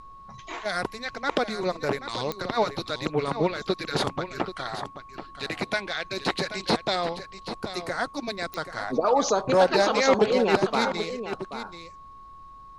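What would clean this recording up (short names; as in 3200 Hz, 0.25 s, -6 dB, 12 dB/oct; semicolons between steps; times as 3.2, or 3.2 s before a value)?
de-click; notch 1100 Hz, Q 30; expander -38 dBFS, range -21 dB; inverse comb 0.782 s -11 dB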